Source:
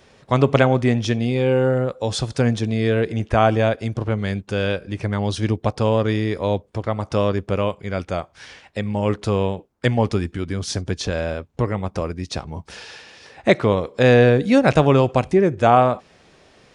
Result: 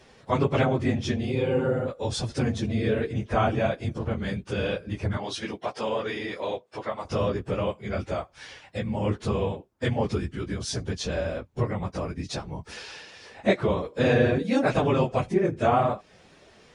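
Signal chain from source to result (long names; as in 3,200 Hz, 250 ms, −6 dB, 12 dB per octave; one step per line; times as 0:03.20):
random phases in long frames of 50 ms
0:05.17–0:07.05: meter weighting curve A
in parallel at +0.5 dB: downward compressor, threshold −29 dBFS, peak gain reduction 19 dB
on the sum: level −8.5 dB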